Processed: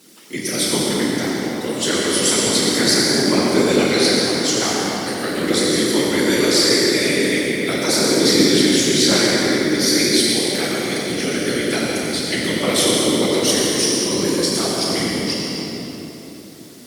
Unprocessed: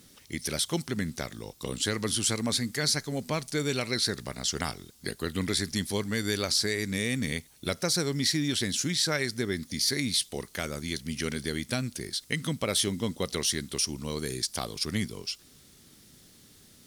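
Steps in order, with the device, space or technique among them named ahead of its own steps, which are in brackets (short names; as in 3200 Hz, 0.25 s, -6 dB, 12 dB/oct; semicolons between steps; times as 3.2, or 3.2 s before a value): FDN reverb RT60 0.98 s, low-frequency decay 1.2×, high-frequency decay 0.95×, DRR -4.5 dB; whispering ghost (whisperiser; HPF 230 Hz 12 dB/oct; reverb RT60 3.8 s, pre-delay 83 ms, DRR -1.5 dB); gain +3.5 dB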